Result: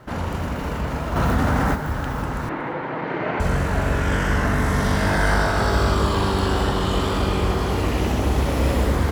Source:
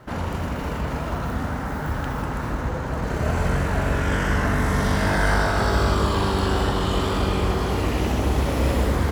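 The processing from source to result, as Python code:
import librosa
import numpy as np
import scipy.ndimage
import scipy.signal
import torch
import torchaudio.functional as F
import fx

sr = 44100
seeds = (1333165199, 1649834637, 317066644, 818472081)

y = fx.cabinet(x, sr, low_hz=160.0, low_slope=24, high_hz=3500.0, hz=(220.0, 320.0, 890.0, 2100.0), db=(-8, 6, 4, 7), at=(2.49, 3.4))
y = fx.echo_feedback(y, sr, ms=235, feedback_pct=35, wet_db=-21)
y = fx.env_flatten(y, sr, amount_pct=70, at=(1.15, 1.74), fade=0.02)
y = F.gain(torch.from_numpy(y), 1.0).numpy()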